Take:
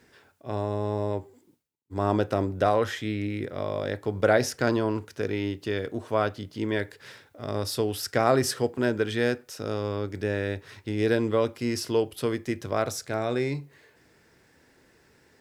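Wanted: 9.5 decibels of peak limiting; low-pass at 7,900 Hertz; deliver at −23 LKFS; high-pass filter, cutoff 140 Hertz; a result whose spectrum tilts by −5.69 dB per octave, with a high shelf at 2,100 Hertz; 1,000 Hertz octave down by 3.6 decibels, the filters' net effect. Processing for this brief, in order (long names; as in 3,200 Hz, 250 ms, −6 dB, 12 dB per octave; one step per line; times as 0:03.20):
high-pass filter 140 Hz
low-pass filter 7,900 Hz
parametric band 1,000 Hz −3.5 dB
high-shelf EQ 2,100 Hz −8 dB
level +9.5 dB
brickwall limiter −10 dBFS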